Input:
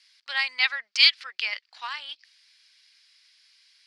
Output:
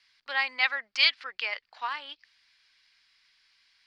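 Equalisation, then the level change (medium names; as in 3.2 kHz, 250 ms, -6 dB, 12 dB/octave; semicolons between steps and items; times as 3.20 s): tilt EQ -5 dB/octave; +3.5 dB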